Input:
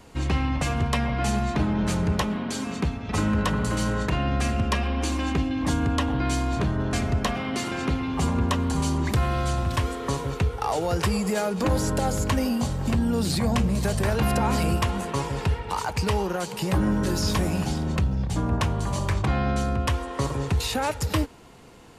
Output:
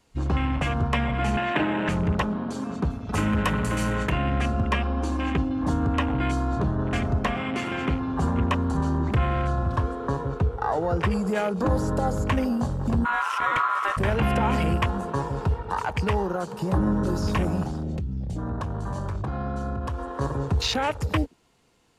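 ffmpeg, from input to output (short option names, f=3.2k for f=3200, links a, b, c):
-filter_complex "[0:a]asettb=1/sr,asplit=3[a][b][c];[a]atrim=end=1.374[d];[b]atrim=start=1.37:end=1.89,asetpts=PTS-STARTPTS,afade=t=in:d=0.004:c=qsin,afade=t=out:st=0.516:d=0.004:c=qsin,highpass=190,equalizer=f=220:t=q:w=4:g=-6,equalizer=f=310:t=q:w=4:g=6,equalizer=f=590:t=q:w=4:g=6,equalizer=f=930:t=q:w=4:g=4,equalizer=f=1.7k:t=q:w=4:g=10,equalizer=f=2.7k:t=q:w=4:g=9,lowpass=f=6.1k:w=0.5412,lowpass=f=6.1k:w=1.3066[e];[c]atrim=start=1.886[f];[d][e]acrossfade=d=0.004:c1=hsin:c2=qsin[g];[g][f]acrossfade=d=0.004:c1=qsin:c2=hsin,asettb=1/sr,asplit=3[h][i][j];[h]atrim=end=2.904[k];[i]atrim=start=2.9:end=4.12,asetpts=PTS-STARTPTS,afade=t=in:d=0.004:c=qsin,afade=t=out:st=1.216:d=0.004:c=qsin,aemphasis=mode=production:type=50fm[l];[j]atrim=start=4.116[m];[k][l]acrossfade=d=0.004:c1=hsin:c2=qsin[n];[n][m]acrossfade=d=0.004:c1=qsin:c2=hsin,asettb=1/sr,asplit=3[o][p][q];[o]atrim=end=8.774[r];[p]atrim=start=8.77:end=11.11,asetpts=PTS-STARTPTS,afade=t=in:d=0.004:c=qsin,afade=t=out:st=2.336:d=0.004:c=qsin,aemphasis=mode=reproduction:type=cd[s];[q]atrim=start=11.106[t];[r][s]acrossfade=d=0.004:c1=hsin:c2=qsin[u];[u][t]acrossfade=d=0.004:c1=qsin:c2=hsin,asplit=3[v][w][x];[v]afade=t=out:st=13.04:d=0.02[y];[w]aeval=exprs='val(0)*sin(2*PI*1200*n/s)':c=same,afade=t=in:st=13.04:d=0.02,afade=t=out:st=13.96:d=0.02[z];[x]afade=t=in:st=13.96:d=0.02[aa];[y][z][aa]amix=inputs=3:normalize=0,asettb=1/sr,asplit=3[ab][ac][ad];[ab]atrim=end=17.634[ae];[ac]atrim=start=17.63:end=20.21,asetpts=PTS-STARTPTS,afade=t=in:d=0.004:c=qsin,afade=t=out:st=2.576:d=0.004:c=qsin,acompressor=threshold=-25dB:ratio=6:attack=3.2:release=140:knee=1:detection=peak[af];[ad]atrim=start=20.206[ag];[ae][af]acrossfade=d=0.004:c1=hsin:c2=qsin[ah];[ah][ag]acrossfade=d=0.004:c1=qsin:c2=hsin,highshelf=f=8.6k:g=-9.5,afwtdn=0.0224,highshelf=f=2.9k:g=11"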